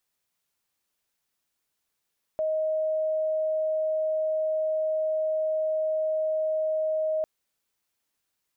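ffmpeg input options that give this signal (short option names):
-f lavfi -i "sine=f=627:d=4.85:r=44100,volume=-5.44dB"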